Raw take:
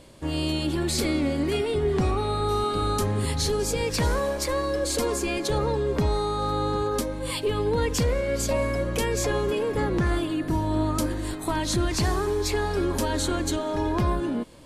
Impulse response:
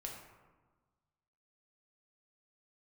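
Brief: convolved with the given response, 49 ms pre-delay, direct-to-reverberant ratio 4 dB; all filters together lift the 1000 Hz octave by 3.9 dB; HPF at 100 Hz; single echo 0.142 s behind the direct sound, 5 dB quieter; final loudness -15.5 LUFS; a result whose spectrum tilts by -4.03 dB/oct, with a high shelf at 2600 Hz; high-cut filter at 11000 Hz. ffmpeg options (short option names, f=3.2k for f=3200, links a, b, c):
-filter_complex "[0:a]highpass=100,lowpass=11k,equalizer=f=1k:t=o:g=4,highshelf=f=2.6k:g=4.5,aecho=1:1:142:0.562,asplit=2[a][b];[1:a]atrim=start_sample=2205,adelay=49[c];[b][c]afir=irnorm=-1:irlink=0,volume=-2dB[d];[a][d]amix=inputs=2:normalize=0,volume=6.5dB"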